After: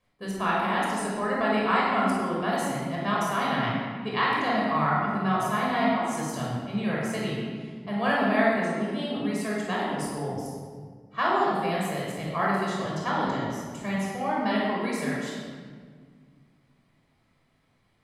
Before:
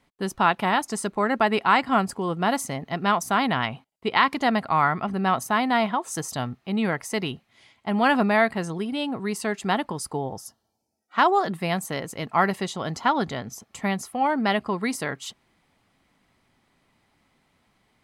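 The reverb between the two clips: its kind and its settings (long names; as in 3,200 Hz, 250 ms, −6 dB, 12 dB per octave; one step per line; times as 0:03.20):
rectangular room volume 2,400 cubic metres, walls mixed, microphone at 5.7 metres
level −11.5 dB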